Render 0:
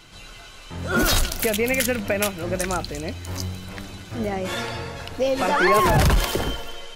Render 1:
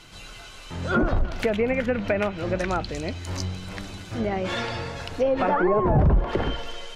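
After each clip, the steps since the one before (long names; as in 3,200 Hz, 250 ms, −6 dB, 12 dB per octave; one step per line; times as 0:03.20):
treble cut that deepens with the level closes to 690 Hz, closed at −15 dBFS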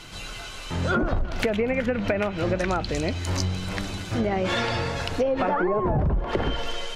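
downward compressor 6 to 1, threshold −26 dBFS, peak gain reduction 11 dB
level +5.5 dB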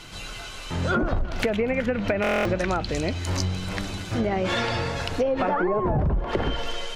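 buffer that repeats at 0:02.22, samples 1,024, times 9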